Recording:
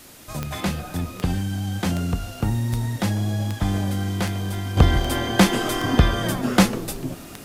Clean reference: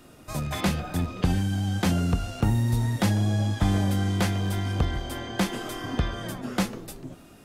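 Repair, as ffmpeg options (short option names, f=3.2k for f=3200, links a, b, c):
-af "adeclick=t=4,afwtdn=0.005,asetnsamples=n=441:p=0,asendcmd='4.77 volume volume -10dB',volume=0dB"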